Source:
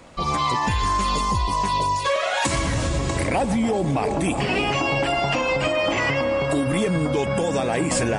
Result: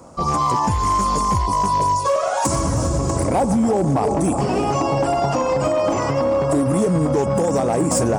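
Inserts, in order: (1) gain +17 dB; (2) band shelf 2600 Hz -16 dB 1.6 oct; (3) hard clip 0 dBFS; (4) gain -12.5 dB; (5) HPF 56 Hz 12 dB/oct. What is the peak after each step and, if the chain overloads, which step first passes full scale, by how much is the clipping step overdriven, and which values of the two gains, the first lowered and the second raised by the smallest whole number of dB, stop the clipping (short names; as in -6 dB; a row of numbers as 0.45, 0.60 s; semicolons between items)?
+6.5, +6.5, 0.0, -12.5, -7.5 dBFS; step 1, 6.5 dB; step 1 +10 dB, step 4 -5.5 dB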